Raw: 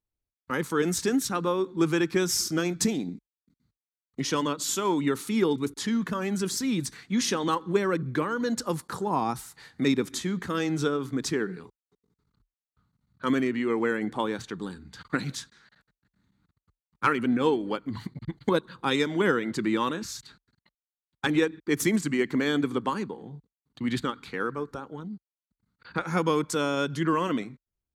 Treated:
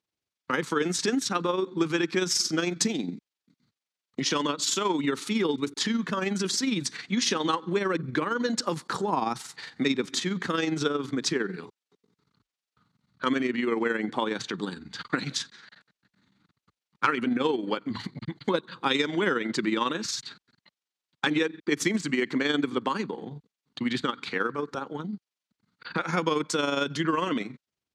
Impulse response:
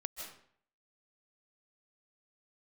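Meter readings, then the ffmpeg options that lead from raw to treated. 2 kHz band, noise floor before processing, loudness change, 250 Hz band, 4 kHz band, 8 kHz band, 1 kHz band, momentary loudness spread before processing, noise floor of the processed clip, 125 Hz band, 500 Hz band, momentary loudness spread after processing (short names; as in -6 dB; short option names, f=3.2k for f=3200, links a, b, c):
+2.0 dB, under -85 dBFS, 0.0 dB, -1.0 dB, +4.5 dB, +1.0 dB, +0.5 dB, 12 LU, under -85 dBFS, -3.0 dB, -1.0 dB, 9 LU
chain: -af "tremolo=f=22:d=0.519,acompressor=threshold=-35dB:ratio=2,highpass=160,lowpass=4.3k,highshelf=f=3.2k:g=11.5,volume=7.5dB"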